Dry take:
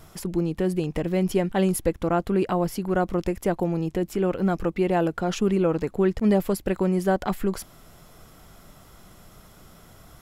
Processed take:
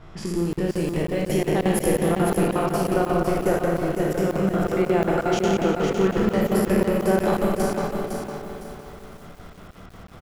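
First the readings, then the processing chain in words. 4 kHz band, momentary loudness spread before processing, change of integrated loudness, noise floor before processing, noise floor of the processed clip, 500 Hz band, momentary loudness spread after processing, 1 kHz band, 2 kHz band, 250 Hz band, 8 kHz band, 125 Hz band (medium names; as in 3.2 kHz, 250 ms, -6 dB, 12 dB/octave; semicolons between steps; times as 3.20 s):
+4.5 dB, 5 LU, +2.0 dB, -51 dBFS, -43 dBFS, +3.0 dB, 9 LU, +3.5 dB, +5.0 dB, +1.5 dB, +4.0 dB, +1.5 dB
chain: spectral sustain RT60 1.43 s; in parallel at +0.5 dB: compression, threshold -33 dBFS, peak gain reduction 17 dB; on the sum: level-controlled noise filter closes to 2.5 kHz, open at -17.5 dBFS; on a send: delay 336 ms -22.5 dB; on the sum: spring tank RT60 3.3 s, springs 52 ms, chirp 55 ms, DRR 0.5 dB; crackling interface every 0.18 s, samples 2048, zero, from 0.53 s; bit-crushed delay 507 ms, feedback 35%, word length 7-bit, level -5.5 dB; trim -5 dB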